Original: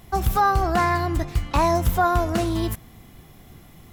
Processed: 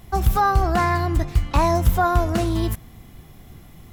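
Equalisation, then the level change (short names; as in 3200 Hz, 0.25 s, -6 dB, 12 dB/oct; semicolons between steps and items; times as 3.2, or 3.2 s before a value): low shelf 130 Hz +5.5 dB; 0.0 dB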